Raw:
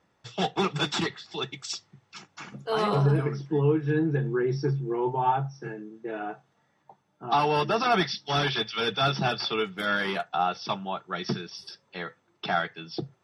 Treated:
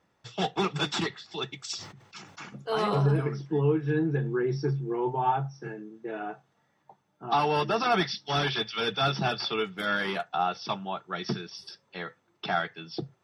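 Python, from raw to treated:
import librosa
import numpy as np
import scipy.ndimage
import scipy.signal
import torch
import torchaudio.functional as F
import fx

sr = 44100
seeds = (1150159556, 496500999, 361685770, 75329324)

y = fx.sustainer(x, sr, db_per_s=73.0, at=(1.73, 2.49))
y = y * librosa.db_to_amplitude(-1.5)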